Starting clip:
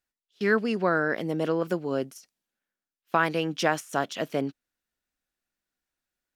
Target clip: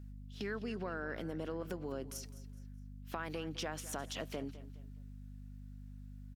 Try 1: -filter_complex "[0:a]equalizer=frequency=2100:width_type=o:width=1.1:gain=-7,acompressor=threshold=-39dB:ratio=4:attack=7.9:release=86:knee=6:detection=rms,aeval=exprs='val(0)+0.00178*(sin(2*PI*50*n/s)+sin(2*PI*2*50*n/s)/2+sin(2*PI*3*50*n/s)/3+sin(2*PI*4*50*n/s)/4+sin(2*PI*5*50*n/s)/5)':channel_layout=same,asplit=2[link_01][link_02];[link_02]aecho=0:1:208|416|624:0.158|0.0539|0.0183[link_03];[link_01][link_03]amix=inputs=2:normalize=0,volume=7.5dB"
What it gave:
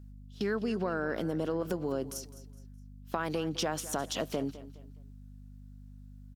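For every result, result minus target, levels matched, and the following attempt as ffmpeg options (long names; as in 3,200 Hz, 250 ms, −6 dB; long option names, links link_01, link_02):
downward compressor: peak gain reduction −9.5 dB; 2,000 Hz band −4.5 dB
-filter_complex "[0:a]equalizer=frequency=2100:width_type=o:width=1.1:gain=-7,acompressor=threshold=-50.5dB:ratio=4:attack=7.9:release=86:knee=6:detection=rms,aeval=exprs='val(0)+0.00178*(sin(2*PI*50*n/s)+sin(2*PI*2*50*n/s)/2+sin(2*PI*3*50*n/s)/3+sin(2*PI*4*50*n/s)/4+sin(2*PI*5*50*n/s)/5)':channel_layout=same,asplit=2[link_01][link_02];[link_02]aecho=0:1:208|416|624:0.158|0.0539|0.0183[link_03];[link_01][link_03]amix=inputs=2:normalize=0,volume=7.5dB"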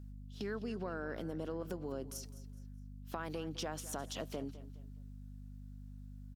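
2,000 Hz band −3.5 dB
-filter_complex "[0:a]acompressor=threshold=-50.5dB:ratio=4:attack=7.9:release=86:knee=6:detection=rms,aeval=exprs='val(0)+0.00178*(sin(2*PI*50*n/s)+sin(2*PI*2*50*n/s)/2+sin(2*PI*3*50*n/s)/3+sin(2*PI*4*50*n/s)/4+sin(2*PI*5*50*n/s)/5)':channel_layout=same,asplit=2[link_01][link_02];[link_02]aecho=0:1:208|416|624:0.158|0.0539|0.0183[link_03];[link_01][link_03]amix=inputs=2:normalize=0,volume=7.5dB"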